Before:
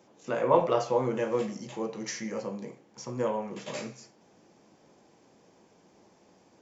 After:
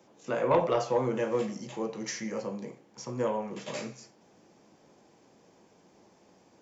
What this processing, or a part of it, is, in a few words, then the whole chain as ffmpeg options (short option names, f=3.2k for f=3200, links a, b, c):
one-band saturation: -filter_complex "[0:a]acrossover=split=270|2500[a][b][c];[b]asoftclip=type=tanh:threshold=-16.5dB[d];[a][d][c]amix=inputs=3:normalize=0"